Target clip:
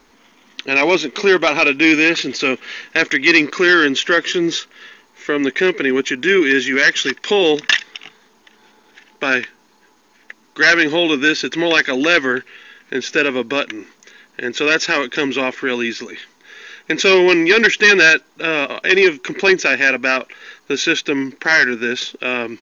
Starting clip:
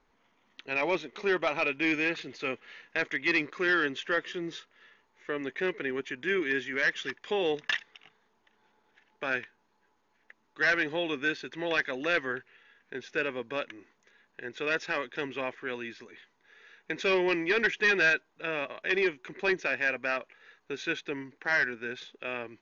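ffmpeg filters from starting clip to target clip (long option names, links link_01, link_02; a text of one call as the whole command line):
ffmpeg -i in.wav -filter_complex "[0:a]firequalizer=gain_entry='entry(120,0);entry(250,9);entry(560,3);entry(5300,13)':delay=0.05:min_phase=1,asplit=2[link_01][link_02];[link_02]alimiter=limit=-23dB:level=0:latency=1:release=108,volume=-0.5dB[link_03];[link_01][link_03]amix=inputs=2:normalize=0,volume=6.5dB" out.wav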